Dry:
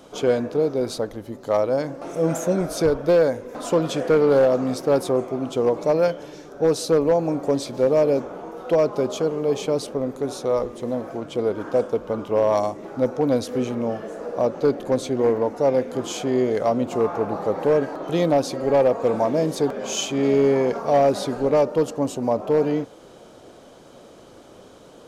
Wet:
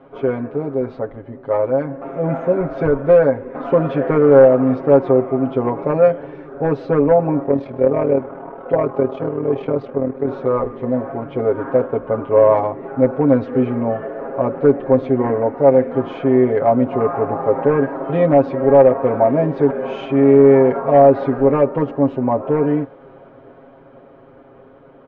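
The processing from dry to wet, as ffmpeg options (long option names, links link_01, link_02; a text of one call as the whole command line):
ffmpeg -i in.wav -filter_complex "[0:a]asettb=1/sr,asplit=3[link_01][link_02][link_03];[link_01]atrim=end=7.434[link_04];[link_02]atrim=start=7.43:end=10.27,asetpts=PTS-STARTPTS,afade=type=in:duration=0.004:curve=qsin,afade=type=out:start_time=2.836:duration=0.004:curve=qsin,tremolo=f=39:d=0.788[link_05];[link_03]atrim=start=10.266[link_06];[link_04][link_05]acrossfade=duration=0.004:curve1=hsin:curve2=qsin[link_07];[link_07][link_06]acrossfade=duration=0.004:curve1=qsin:curve2=hsin,lowpass=frequency=2100:width=0.5412,lowpass=frequency=2100:width=1.3066,aecho=1:1:7.4:0.89,dynaudnorm=framelen=370:gausssize=13:maxgain=11.5dB,volume=-1dB" out.wav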